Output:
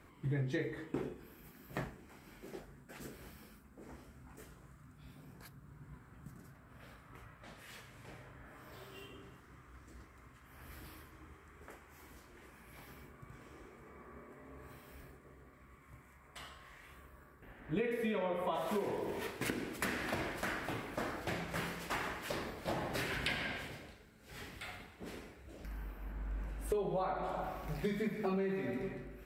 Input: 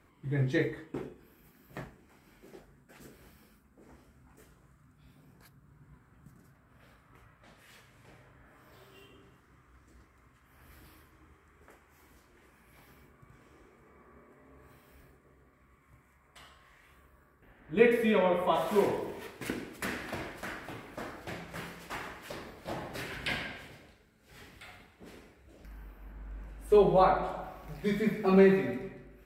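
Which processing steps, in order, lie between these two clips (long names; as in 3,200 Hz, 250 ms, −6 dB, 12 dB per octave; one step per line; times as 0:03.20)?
in parallel at +3 dB: brickwall limiter −19 dBFS, peak gain reduction 9 dB
on the sum: downward compressor 8 to 1, threshold −29 dBFS, peak gain reduction 16.5 dB
level −4 dB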